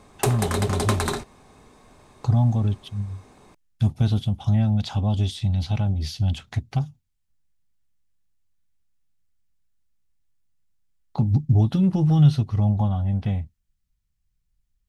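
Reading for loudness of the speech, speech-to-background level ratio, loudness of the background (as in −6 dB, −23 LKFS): −23.0 LKFS, 4.0 dB, −27.0 LKFS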